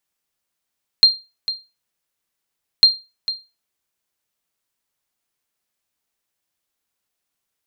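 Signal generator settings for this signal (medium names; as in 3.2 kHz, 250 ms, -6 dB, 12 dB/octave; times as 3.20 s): sonar ping 4.19 kHz, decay 0.26 s, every 1.80 s, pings 2, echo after 0.45 s, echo -13.5 dB -2 dBFS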